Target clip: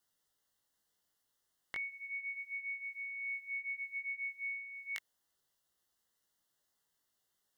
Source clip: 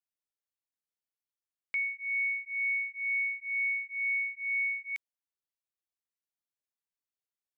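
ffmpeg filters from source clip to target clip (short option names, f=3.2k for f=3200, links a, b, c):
-af "alimiter=level_in=9dB:limit=-24dB:level=0:latency=1,volume=-9dB,flanger=delay=16.5:depth=3.5:speed=0.32,asuperstop=centerf=2400:order=8:qfactor=3.8,volume=16.5dB"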